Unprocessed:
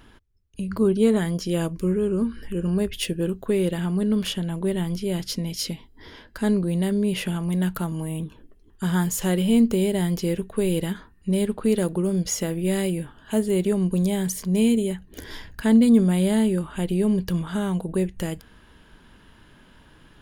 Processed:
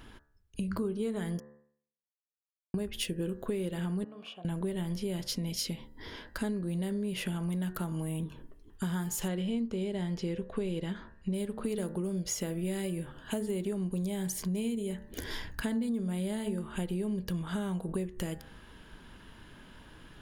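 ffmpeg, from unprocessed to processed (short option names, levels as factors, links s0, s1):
-filter_complex "[0:a]asettb=1/sr,asplit=3[s0][s1][s2];[s0]atrim=end=4.044[s3];[s1]atrim=start=4.04:end=4.45,asetpts=PTS-STARTPTS,afade=t=in:d=0.004:c=qsin,afade=t=out:st=0.406:d=0.004:c=qsin,asplit=3[s4][s5][s6];[s4]bandpass=f=730:t=q:w=8,volume=1[s7];[s5]bandpass=f=1090:t=q:w=8,volume=0.501[s8];[s6]bandpass=f=2440:t=q:w=8,volume=0.355[s9];[s7][s8][s9]amix=inputs=3:normalize=0[s10];[s2]atrim=start=4.446[s11];[s3][s10]acrossfade=d=0.004:c1=hsin:c2=qsin[s12];[s12][s11]acrossfade=d=0.004:c1=qsin:c2=hsin,asettb=1/sr,asplit=3[s13][s14][s15];[s13]atrim=end=9.284[s16];[s14]atrim=start=9.28:end=11.34,asetpts=PTS-STARTPTS,afade=t=in:d=0.004:c=qsin,afade=t=out:st=2.056:d=0.004:c=qsin,lowpass=5500[s17];[s15]atrim=start=11.336[s18];[s16][s17]acrossfade=d=0.004:c1=hsin:c2=qsin[s19];[s19][s18]acrossfade=d=0.004:c1=qsin:c2=hsin,asplit=3[s20][s21][s22];[s20]atrim=end=1.4,asetpts=PTS-STARTPTS,afade=t=out:st=1.396:d=0.004:c=hsin[s23];[s21]atrim=start=1.4:end=2.74,asetpts=PTS-STARTPTS,volume=0[s24];[s22]atrim=start=2.74,asetpts=PTS-STARTPTS,afade=t=in:d=0.004:c=hsin[s25];[s23][s24][s25]concat=n=3:v=0:a=1,bandreject=f=73.19:t=h:w=4,bandreject=f=146.38:t=h:w=4,bandreject=f=219.57:t=h:w=4,bandreject=f=292.76:t=h:w=4,bandreject=f=365.95:t=h:w=4,bandreject=f=439.14:t=h:w=4,bandreject=f=512.33:t=h:w=4,bandreject=f=585.52:t=h:w=4,bandreject=f=658.71:t=h:w=4,bandreject=f=731.9:t=h:w=4,bandreject=f=805.09:t=h:w=4,bandreject=f=878.28:t=h:w=4,bandreject=f=951.47:t=h:w=4,bandreject=f=1024.66:t=h:w=4,bandreject=f=1097.85:t=h:w=4,bandreject=f=1171.04:t=h:w=4,bandreject=f=1244.23:t=h:w=4,bandreject=f=1317.42:t=h:w=4,bandreject=f=1390.61:t=h:w=4,bandreject=f=1463.8:t=h:w=4,bandreject=f=1536.99:t=h:w=4,bandreject=f=1610.18:t=h:w=4,bandreject=f=1683.37:t=h:w=4,bandreject=f=1756.56:t=h:w=4,bandreject=f=1829.75:t=h:w=4,bandreject=f=1902.94:t=h:w=4,bandreject=f=1976.13:t=h:w=4,acompressor=threshold=0.0282:ratio=6"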